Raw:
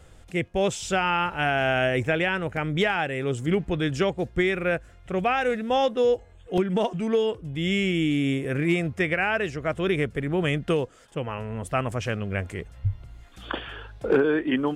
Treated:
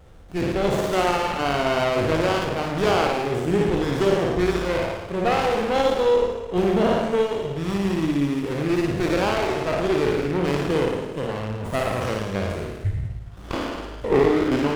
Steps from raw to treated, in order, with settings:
peak hold with a decay on every bin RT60 1.17 s
flutter between parallel walls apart 9.6 metres, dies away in 0.81 s
windowed peak hold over 17 samples

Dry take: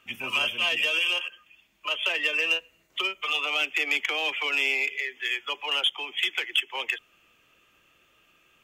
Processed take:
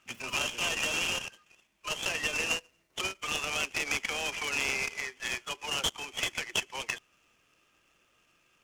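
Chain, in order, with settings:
short delay modulated by noise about 3,200 Hz, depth 0.033 ms
level −5.5 dB

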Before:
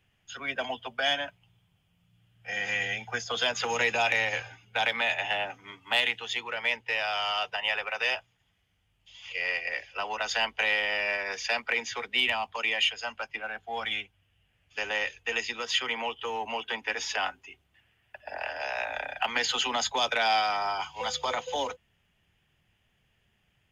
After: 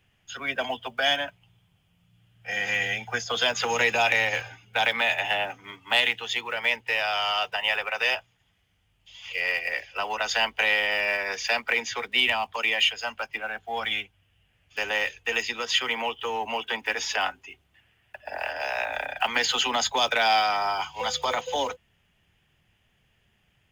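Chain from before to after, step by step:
one scale factor per block 7 bits
level +3.5 dB

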